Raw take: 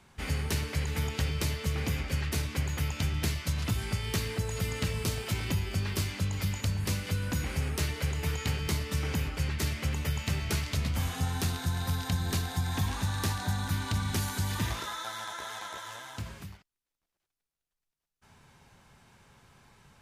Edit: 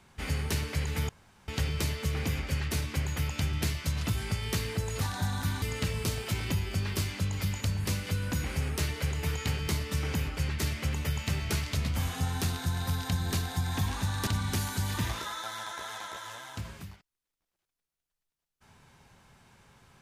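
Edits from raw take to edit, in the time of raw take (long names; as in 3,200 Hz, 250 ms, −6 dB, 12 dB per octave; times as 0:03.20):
0:01.09: splice in room tone 0.39 s
0:13.27–0:13.88: move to 0:04.62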